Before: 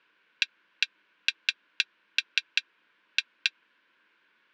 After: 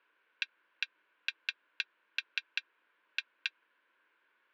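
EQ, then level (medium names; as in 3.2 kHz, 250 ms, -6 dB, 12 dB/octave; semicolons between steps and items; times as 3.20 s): high-pass 430 Hz 12 dB/octave; low-pass 1.2 kHz 6 dB/octave; -1.0 dB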